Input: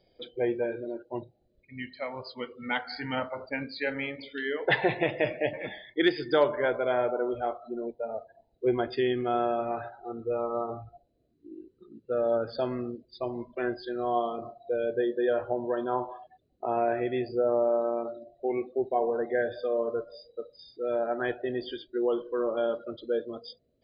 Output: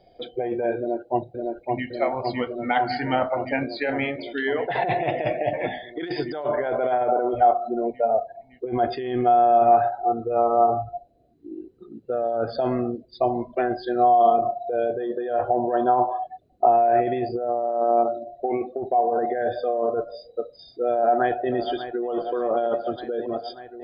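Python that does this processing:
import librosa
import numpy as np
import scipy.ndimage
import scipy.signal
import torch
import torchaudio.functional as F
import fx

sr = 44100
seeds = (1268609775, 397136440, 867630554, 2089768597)

y = fx.echo_throw(x, sr, start_s=0.78, length_s=1.09, ms=560, feedback_pct=80, wet_db=-2.5)
y = fx.echo_throw(y, sr, start_s=20.92, length_s=1.16, ms=590, feedback_pct=75, wet_db=-15.0)
y = fx.high_shelf(y, sr, hz=2600.0, db=-6.0)
y = fx.over_compress(y, sr, threshold_db=-31.0, ratio=-1.0)
y = fx.peak_eq(y, sr, hz=720.0, db=14.0, octaves=0.25)
y = y * 10.0 ** (5.5 / 20.0)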